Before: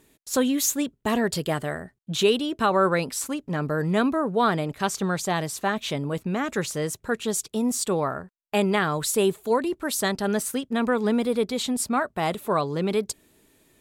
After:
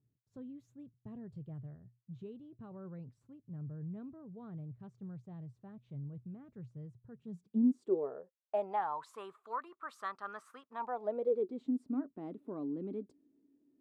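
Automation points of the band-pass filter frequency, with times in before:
band-pass filter, Q 8.7
7.11 s 120 Hz
7.99 s 410 Hz
9.25 s 1.2 kHz
10.65 s 1.2 kHz
11.62 s 280 Hz

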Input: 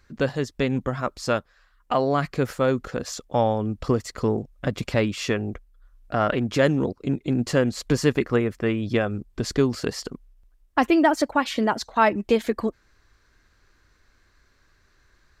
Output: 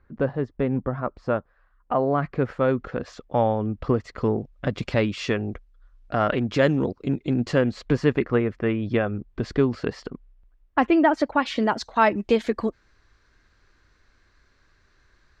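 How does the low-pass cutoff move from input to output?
1.99 s 1.3 kHz
2.71 s 2.5 kHz
3.94 s 2.5 kHz
4.82 s 4.8 kHz
7.36 s 4.8 kHz
7.94 s 2.7 kHz
11.06 s 2.7 kHz
11.63 s 6 kHz

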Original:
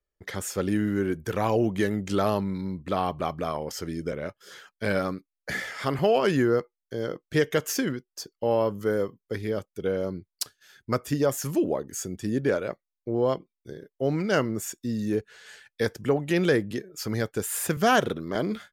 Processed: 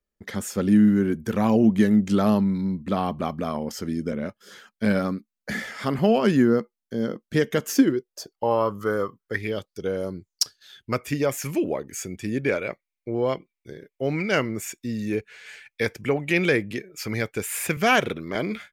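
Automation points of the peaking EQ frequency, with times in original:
peaking EQ +14.5 dB 0.41 oct
7.67 s 220 Hz
8.59 s 1.2 kHz
9.18 s 1.2 kHz
10.03 s 10 kHz
11.01 s 2.3 kHz

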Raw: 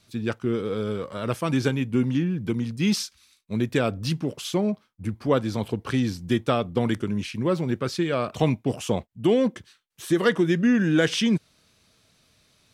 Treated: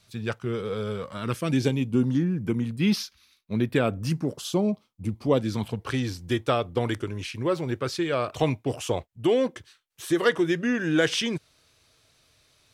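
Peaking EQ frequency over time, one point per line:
peaking EQ -14 dB 0.5 oct
0.96 s 280 Hz
1.52 s 1.1 kHz
3.02 s 8.1 kHz
3.57 s 8.1 kHz
4.67 s 1.6 kHz
5.32 s 1.6 kHz
5.87 s 200 Hz

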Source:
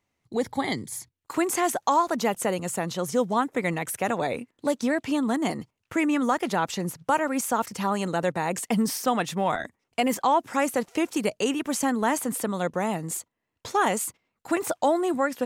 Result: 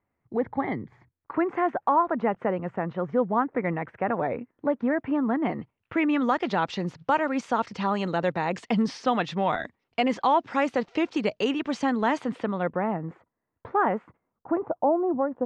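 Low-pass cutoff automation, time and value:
low-pass 24 dB/octave
5.23 s 1.9 kHz
6.37 s 4.5 kHz
12.15 s 4.5 kHz
12.96 s 1.7 kHz
14.02 s 1.7 kHz
14.73 s 1 kHz

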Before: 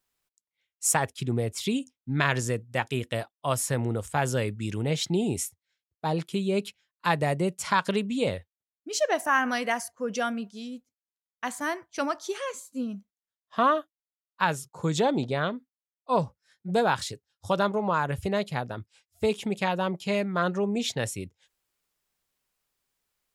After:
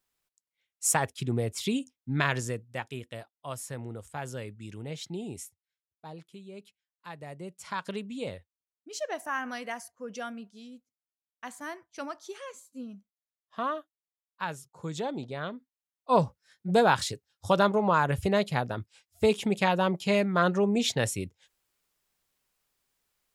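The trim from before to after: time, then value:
2.17 s -1.5 dB
3.12 s -11 dB
5.42 s -11 dB
6.41 s -19 dB
7.10 s -19 dB
7.88 s -9 dB
15.33 s -9 dB
16.16 s +2 dB

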